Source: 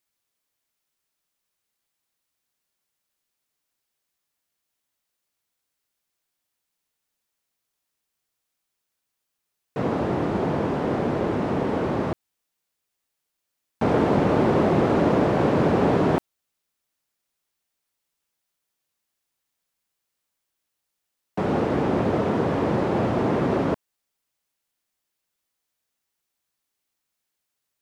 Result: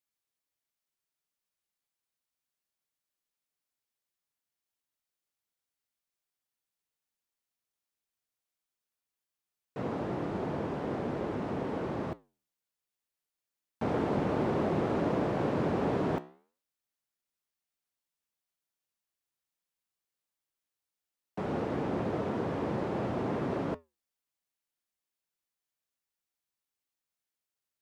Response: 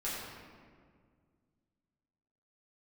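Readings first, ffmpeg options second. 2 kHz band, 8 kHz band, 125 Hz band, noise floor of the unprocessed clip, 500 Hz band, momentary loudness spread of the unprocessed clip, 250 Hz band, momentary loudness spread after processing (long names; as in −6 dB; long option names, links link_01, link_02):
−10.0 dB, can't be measured, −10.0 dB, −81 dBFS, −10.0 dB, 8 LU, −10.0 dB, 8 LU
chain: -af "flanger=delay=5.8:depth=9.9:regen=-82:speed=0.59:shape=sinusoidal,volume=-5.5dB"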